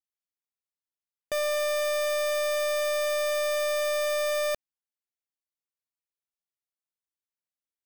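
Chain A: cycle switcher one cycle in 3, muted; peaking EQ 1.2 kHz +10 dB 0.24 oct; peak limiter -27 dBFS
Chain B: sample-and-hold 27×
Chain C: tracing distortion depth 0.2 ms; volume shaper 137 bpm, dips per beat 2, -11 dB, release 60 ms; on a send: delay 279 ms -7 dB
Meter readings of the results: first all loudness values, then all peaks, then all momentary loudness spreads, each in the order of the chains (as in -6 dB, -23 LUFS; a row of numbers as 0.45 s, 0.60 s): -31.5 LUFS, -27.0 LUFS, -27.0 LUFS; -27.0 dBFS, -26.5 dBFS, -23.5 dBFS; 3 LU, 3 LU, 6 LU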